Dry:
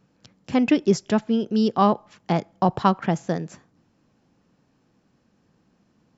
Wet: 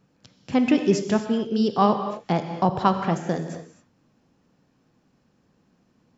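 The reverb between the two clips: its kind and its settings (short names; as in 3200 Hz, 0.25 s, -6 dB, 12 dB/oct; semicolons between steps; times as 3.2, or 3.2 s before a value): non-linear reverb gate 0.29 s flat, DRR 6.5 dB; gain -1 dB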